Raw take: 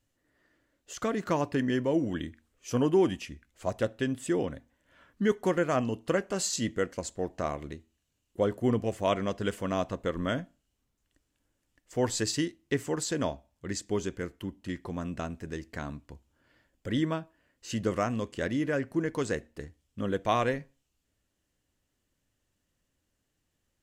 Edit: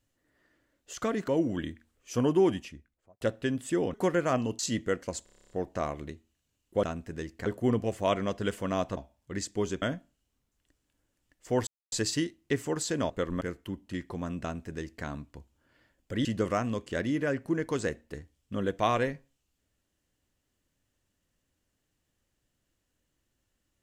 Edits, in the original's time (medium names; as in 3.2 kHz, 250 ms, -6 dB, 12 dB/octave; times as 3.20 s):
1.28–1.85 s: delete
3.02–3.78 s: studio fade out
4.51–5.37 s: delete
6.02–6.49 s: delete
7.14 s: stutter 0.03 s, 10 plays
9.97–10.28 s: swap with 13.31–14.16 s
12.13 s: insert silence 0.25 s
15.17–15.80 s: copy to 8.46 s
17.00–17.71 s: delete